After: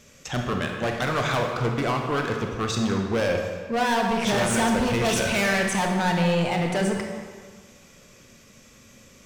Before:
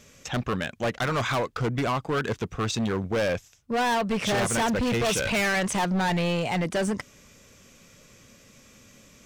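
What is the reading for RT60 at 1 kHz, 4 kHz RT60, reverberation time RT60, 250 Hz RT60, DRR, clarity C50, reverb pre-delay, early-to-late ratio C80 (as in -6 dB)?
1.7 s, 1.2 s, 1.6 s, 1.5 s, 2.0 dB, 3.0 dB, 26 ms, 5.0 dB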